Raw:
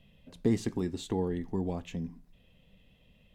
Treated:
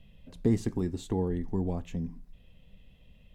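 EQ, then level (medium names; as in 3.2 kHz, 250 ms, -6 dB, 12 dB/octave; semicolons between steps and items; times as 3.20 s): dynamic bell 3.3 kHz, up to -5 dB, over -56 dBFS, Q 0.76; bass shelf 86 Hz +11 dB; 0.0 dB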